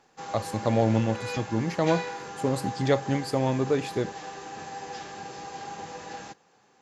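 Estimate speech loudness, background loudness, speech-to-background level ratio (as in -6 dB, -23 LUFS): -27.5 LUFS, -37.5 LUFS, 10.0 dB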